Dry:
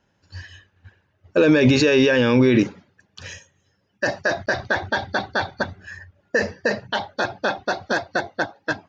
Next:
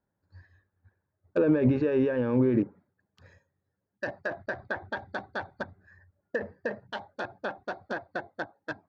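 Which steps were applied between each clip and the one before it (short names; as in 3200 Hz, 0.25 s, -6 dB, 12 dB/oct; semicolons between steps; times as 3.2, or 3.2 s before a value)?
Wiener smoothing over 15 samples; treble ducked by the level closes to 1200 Hz, closed at -15.5 dBFS; upward expander 1.5:1, over -28 dBFS; gain -6.5 dB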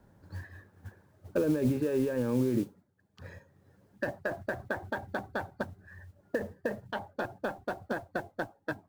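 modulation noise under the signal 21 dB; tilt -1.5 dB/oct; three-band squash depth 70%; gain -2.5 dB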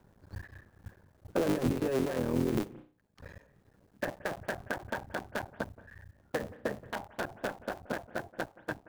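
cycle switcher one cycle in 3, muted; reverb, pre-delay 0.174 s, DRR 20 dB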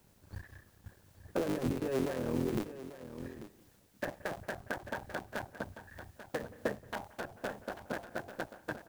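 added noise white -67 dBFS; echo 0.841 s -12 dB; noise-modulated level, depth 55%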